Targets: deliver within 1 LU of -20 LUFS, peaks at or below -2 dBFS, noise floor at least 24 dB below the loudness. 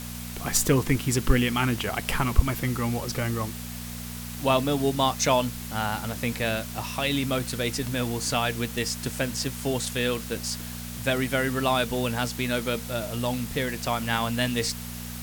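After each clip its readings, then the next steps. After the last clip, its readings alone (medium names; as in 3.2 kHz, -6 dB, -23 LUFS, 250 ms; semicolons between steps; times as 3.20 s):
hum 60 Hz; highest harmonic 240 Hz; hum level -35 dBFS; noise floor -37 dBFS; noise floor target -51 dBFS; loudness -27.0 LUFS; peak level -4.0 dBFS; loudness target -20.0 LUFS
-> de-hum 60 Hz, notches 4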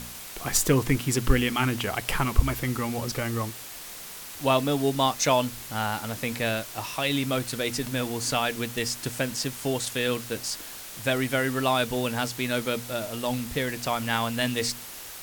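hum not found; noise floor -41 dBFS; noise floor target -51 dBFS
-> noise reduction 10 dB, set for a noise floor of -41 dBFS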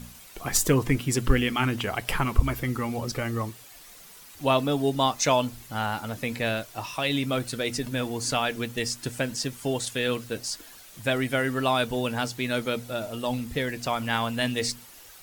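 noise floor -49 dBFS; noise floor target -52 dBFS
-> noise reduction 6 dB, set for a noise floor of -49 dBFS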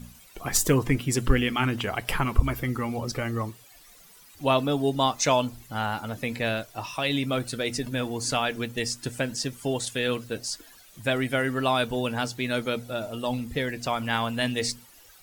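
noise floor -53 dBFS; loudness -27.5 LUFS; peak level -5.0 dBFS; loudness target -20.0 LUFS
-> trim +7.5 dB; peak limiter -2 dBFS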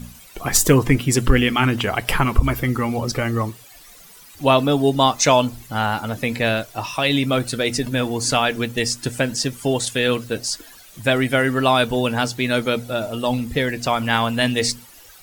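loudness -20.0 LUFS; peak level -2.0 dBFS; noise floor -45 dBFS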